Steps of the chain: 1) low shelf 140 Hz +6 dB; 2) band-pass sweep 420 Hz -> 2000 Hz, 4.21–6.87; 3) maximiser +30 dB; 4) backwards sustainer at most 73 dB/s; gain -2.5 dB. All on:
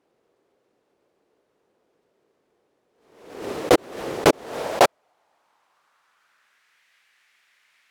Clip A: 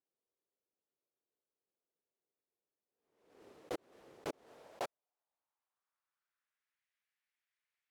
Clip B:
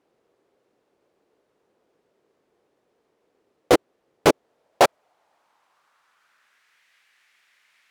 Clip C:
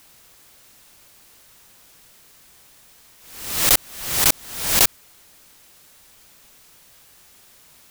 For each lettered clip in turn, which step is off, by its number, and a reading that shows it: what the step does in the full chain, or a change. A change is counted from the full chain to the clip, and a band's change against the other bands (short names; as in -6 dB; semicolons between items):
3, momentary loudness spread change +4 LU; 4, momentary loudness spread change -12 LU; 2, 8 kHz band +18.5 dB